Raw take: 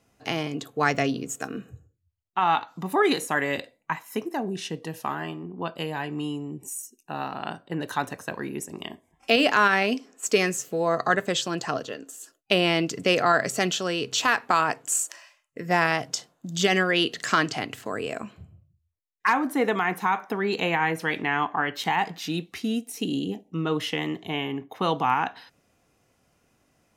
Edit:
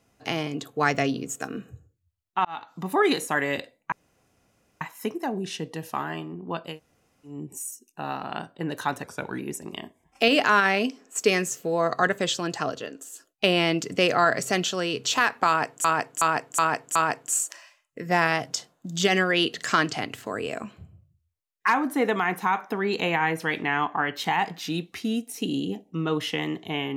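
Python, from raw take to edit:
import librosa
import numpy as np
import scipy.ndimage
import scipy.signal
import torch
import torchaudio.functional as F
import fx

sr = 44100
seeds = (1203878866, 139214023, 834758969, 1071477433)

y = fx.edit(x, sr, fx.fade_in_span(start_s=2.45, length_s=0.38),
    fx.insert_room_tone(at_s=3.92, length_s=0.89),
    fx.room_tone_fill(start_s=5.83, length_s=0.59, crossfade_s=0.16),
    fx.speed_span(start_s=8.15, length_s=0.31, speed=0.9),
    fx.repeat(start_s=14.55, length_s=0.37, count=5), tone=tone)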